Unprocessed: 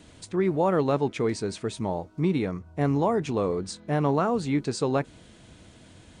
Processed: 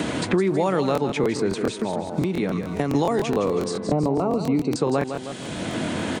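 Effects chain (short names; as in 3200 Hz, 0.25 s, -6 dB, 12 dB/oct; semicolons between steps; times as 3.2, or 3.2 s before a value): in parallel at 0 dB: limiter -23.5 dBFS, peak gain reduction 11 dB; on the sum: HPF 140 Hz 12 dB/oct; 1.69–2.95 compressor, threshold -30 dBFS, peak gain reduction 13 dB; 3.87–4.76 running mean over 26 samples; feedback echo 0.158 s, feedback 33%, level -10 dB; crackling interface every 0.14 s, samples 1024, repeat, from 0.93; three-band squash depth 100%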